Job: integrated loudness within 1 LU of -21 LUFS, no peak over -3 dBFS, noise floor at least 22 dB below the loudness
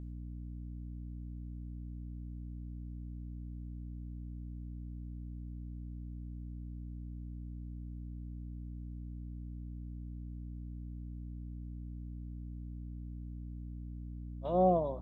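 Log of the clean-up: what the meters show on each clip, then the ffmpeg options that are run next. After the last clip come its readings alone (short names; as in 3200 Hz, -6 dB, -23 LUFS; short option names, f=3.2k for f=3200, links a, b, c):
hum 60 Hz; harmonics up to 300 Hz; hum level -41 dBFS; loudness -42.0 LUFS; peak -17.5 dBFS; loudness target -21.0 LUFS
-> -af "bandreject=f=60:t=h:w=6,bandreject=f=120:t=h:w=6,bandreject=f=180:t=h:w=6,bandreject=f=240:t=h:w=6,bandreject=f=300:t=h:w=6"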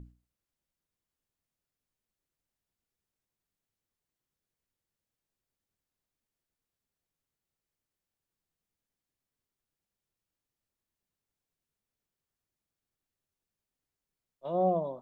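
hum none; loudness -30.0 LUFS; peak -18.0 dBFS; loudness target -21.0 LUFS
-> -af "volume=9dB"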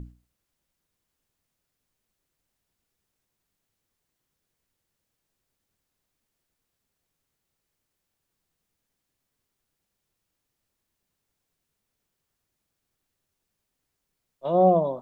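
loudness -21.0 LUFS; peak -9.0 dBFS; noise floor -82 dBFS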